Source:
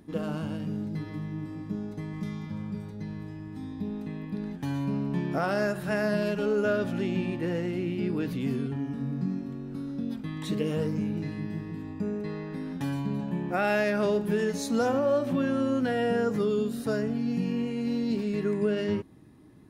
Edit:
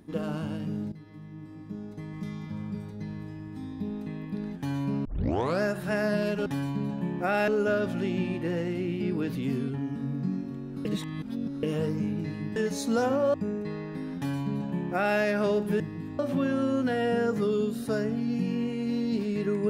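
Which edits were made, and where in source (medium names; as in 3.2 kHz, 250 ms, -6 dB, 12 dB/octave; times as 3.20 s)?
0.92–2.65 s: fade in, from -14.5 dB
5.05 s: tape start 0.56 s
9.83–10.61 s: reverse
11.54–11.93 s: swap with 14.39–15.17 s
12.76–13.78 s: copy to 6.46 s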